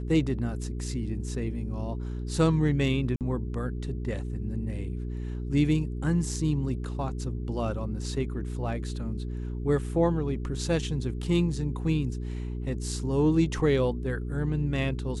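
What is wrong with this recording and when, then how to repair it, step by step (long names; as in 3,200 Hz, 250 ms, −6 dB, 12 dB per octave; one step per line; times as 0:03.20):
mains hum 60 Hz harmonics 7 −33 dBFS
0:03.16–0:03.21: drop-out 48 ms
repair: hum removal 60 Hz, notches 7
repair the gap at 0:03.16, 48 ms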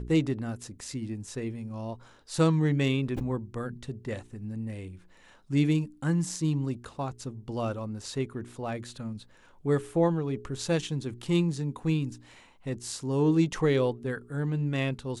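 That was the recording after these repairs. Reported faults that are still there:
none of them is left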